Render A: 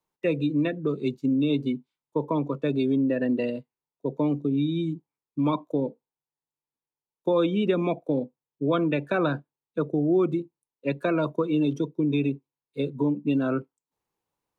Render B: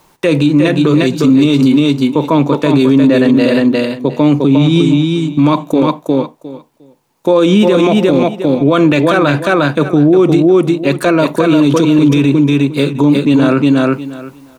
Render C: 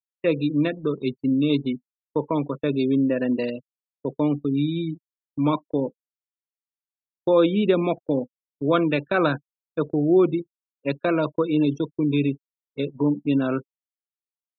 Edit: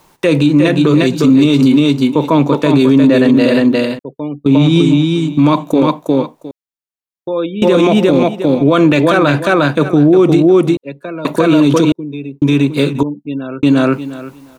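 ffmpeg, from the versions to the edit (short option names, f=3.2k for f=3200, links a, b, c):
-filter_complex "[2:a]asplit=3[a][b][c];[0:a]asplit=2[d][e];[1:a]asplit=6[f][g][h][i][j][k];[f]atrim=end=3.992[l];[a]atrim=start=3.988:end=4.462[m];[g]atrim=start=4.458:end=6.512[n];[b]atrim=start=6.508:end=7.622[o];[h]atrim=start=7.618:end=10.772[p];[d]atrim=start=10.768:end=11.252[q];[i]atrim=start=11.248:end=11.922[r];[e]atrim=start=11.918:end=12.422[s];[j]atrim=start=12.418:end=13.032[t];[c]atrim=start=13.028:end=13.632[u];[k]atrim=start=13.628[v];[l][m]acrossfade=d=0.004:c1=hsin:c2=hsin[w];[w][n]acrossfade=d=0.004:c1=hsin:c2=hsin[x];[x][o]acrossfade=d=0.004:c1=hsin:c2=hsin[y];[y][p]acrossfade=d=0.004:c1=hsin:c2=hsin[z];[z][q]acrossfade=d=0.004:c1=hsin:c2=hsin[aa];[aa][r]acrossfade=d=0.004:c1=hsin:c2=hsin[ab];[ab][s]acrossfade=d=0.004:c1=hsin:c2=hsin[ac];[ac][t]acrossfade=d=0.004:c1=hsin:c2=hsin[ad];[ad][u]acrossfade=d=0.004:c1=hsin:c2=hsin[ae];[ae][v]acrossfade=d=0.004:c1=hsin:c2=hsin"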